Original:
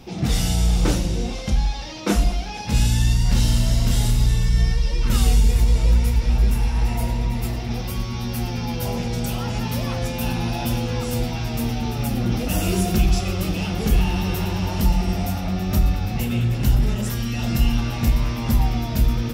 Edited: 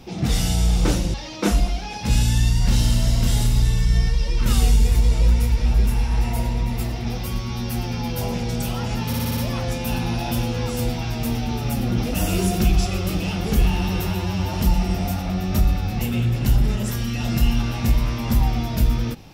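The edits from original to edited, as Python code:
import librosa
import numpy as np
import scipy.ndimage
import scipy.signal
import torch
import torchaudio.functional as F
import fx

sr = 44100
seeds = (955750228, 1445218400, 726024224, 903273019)

y = fx.edit(x, sr, fx.cut(start_s=1.14, length_s=0.64),
    fx.stutter(start_s=9.71, slice_s=0.06, count=6),
    fx.stretch_span(start_s=14.41, length_s=0.31, factor=1.5), tone=tone)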